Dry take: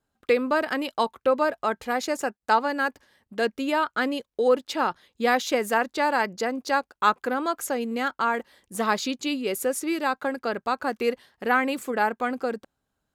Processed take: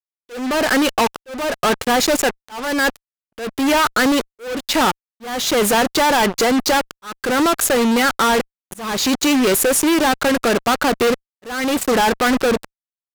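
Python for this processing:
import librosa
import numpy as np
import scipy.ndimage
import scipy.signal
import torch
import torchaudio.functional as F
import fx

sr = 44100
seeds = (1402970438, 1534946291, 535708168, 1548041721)

y = fx.fuzz(x, sr, gain_db=43.0, gate_db=-38.0)
y = fx.auto_swell(y, sr, attack_ms=406.0)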